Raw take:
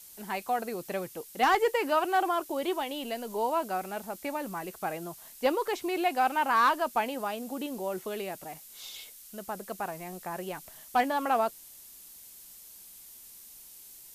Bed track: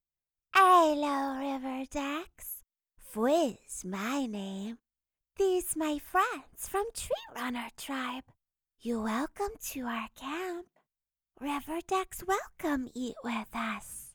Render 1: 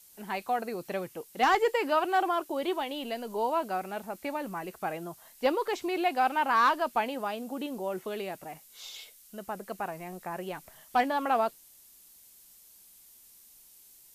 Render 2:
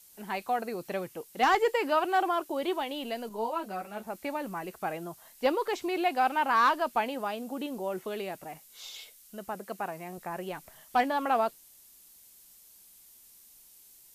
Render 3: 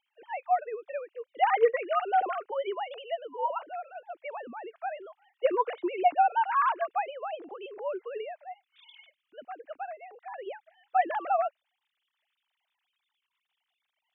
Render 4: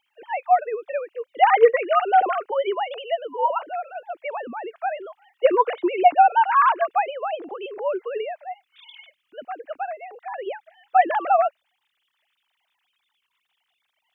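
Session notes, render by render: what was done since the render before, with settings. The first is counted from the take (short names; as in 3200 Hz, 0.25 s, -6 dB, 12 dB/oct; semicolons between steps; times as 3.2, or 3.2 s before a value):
noise print and reduce 6 dB
3.29–4.07 ensemble effect; 9.54–10.18 HPF 120 Hz
sine-wave speech
gain +8.5 dB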